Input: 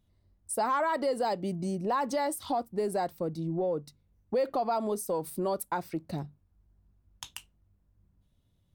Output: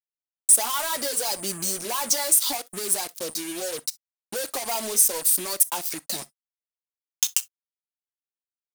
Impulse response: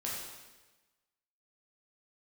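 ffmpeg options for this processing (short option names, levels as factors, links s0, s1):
-filter_complex "[0:a]highpass=250,equalizer=f=6300:t=o:w=1.1:g=9.5,aeval=exprs='0.141*(cos(1*acos(clip(val(0)/0.141,-1,1)))-cos(1*PI/2))+0.0316*(cos(5*acos(clip(val(0)/0.141,-1,1)))-cos(5*PI/2))':c=same,acompressor=threshold=0.0178:ratio=2,flanger=delay=5.6:depth=3.6:regen=-16:speed=0.71:shape=sinusoidal,aeval=exprs='val(0)+0.000891*sin(2*PI*9100*n/s)':c=same,acrusher=bits=6:mix=0:aa=0.5,crystalizer=i=8:c=0,asplit=2[s0][s1];[1:a]atrim=start_sample=2205,atrim=end_sample=3087[s2];[s1][s2]afir=irnorm=-1:irlink=0,volume=0.15[s3];[s0][s3]amix=inputs=2:normalize=0"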